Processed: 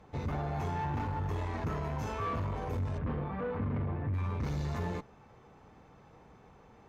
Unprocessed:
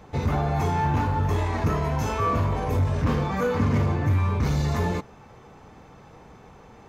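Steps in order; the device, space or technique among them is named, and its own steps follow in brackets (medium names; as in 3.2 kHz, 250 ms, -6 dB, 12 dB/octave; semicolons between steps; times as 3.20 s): 2.98–4.14 s: distance through air 460 m; tube preamp driven hard (valve stage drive 20 dB, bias 0.4; treble shelf 5.2 kHz -6 dB); trim -7.5 dB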